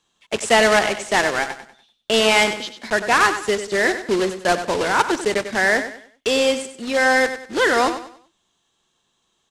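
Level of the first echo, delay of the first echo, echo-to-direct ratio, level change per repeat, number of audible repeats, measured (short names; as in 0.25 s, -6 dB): -10.5 dB, 96 ms, -10.0 dB, -9.5 dB, 3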